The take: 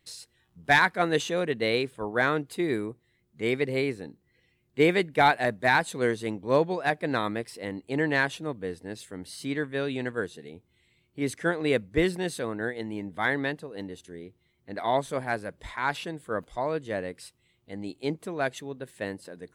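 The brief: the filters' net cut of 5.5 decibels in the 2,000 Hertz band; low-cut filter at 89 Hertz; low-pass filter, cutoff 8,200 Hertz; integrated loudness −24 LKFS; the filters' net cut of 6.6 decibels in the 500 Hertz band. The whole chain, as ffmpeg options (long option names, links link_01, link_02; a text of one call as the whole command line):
ffmpeg -i in.wav -af "highpass=89,lowpass=8200,equalizer=frequency=500:width_type=o:gain=-8,equalizer=frequency=2000:width_type=o:gain=-6.5,volume=8.5dB" out.wav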